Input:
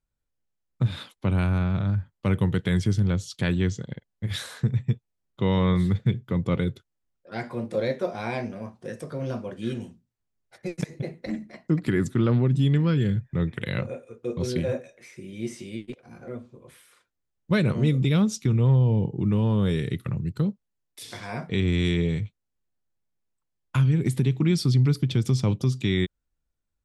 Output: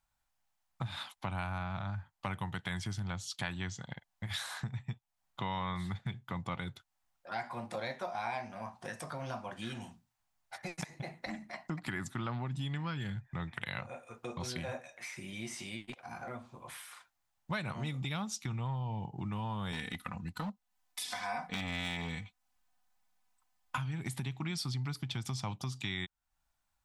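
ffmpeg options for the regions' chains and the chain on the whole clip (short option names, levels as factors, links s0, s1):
-filter_complex "[0:a]asettb=1/sr,asplit=3[s0][s1][s2];[s0]atrim=end=19.724[s3];[s1]atrim=start=19.72:end=23.78,asetpts=PTS-STARTPTS,afade=t=in:d=0.004:c=qsin,afade=t=out:st=4.056:d=0.004:c=qsin,aecho=1:1:4:0.87,atrim=end_sample=179046,volume=8.91,asoftclip=hard,volume=0.112[s4];[s2]atrim=start=23.776[s5];[s3][s4]acrossfade=d=0.004:c1=hsin:c2=qsin[s6];[s6][s5]acrossfade=d=0.004:c1=qsin:c2=hsin,lowshelf=f=600:t=q:w=3:g=-9,acompressor=threshold=0.00398:ratio=2.5,volume=2.11"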